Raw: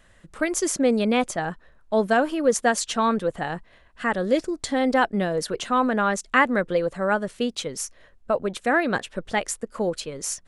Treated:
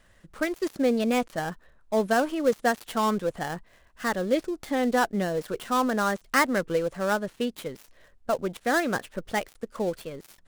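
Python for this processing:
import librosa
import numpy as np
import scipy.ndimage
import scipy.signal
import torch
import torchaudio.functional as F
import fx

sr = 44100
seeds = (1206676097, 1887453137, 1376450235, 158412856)

y = fx.dead_time(x, sr, dead_ms=0.087)
y = fx.record_warp(y, sr, rpm=33.33, depth_cents=100.0)
y = y * librosa.db_to_amplitude(-3.0)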